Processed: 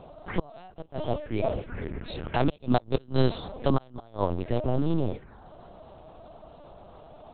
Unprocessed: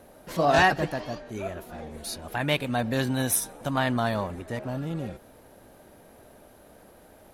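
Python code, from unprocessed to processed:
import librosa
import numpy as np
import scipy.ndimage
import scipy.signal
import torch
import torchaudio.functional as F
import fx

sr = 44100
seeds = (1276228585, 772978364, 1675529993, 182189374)

y = fx.env_phaser(x, sr, low_hz=260.0, high_hz=2000.0, full_db=-29.5)
y = fx.gate_flip(y, sr, shuts_db=-18.0, range_db=-32)
y = fx.lpc_vocoder(y, sr, seeds[0], excitation='pitch_kept', order=8)
y = y * librosa.db_to_amplitude(7.5)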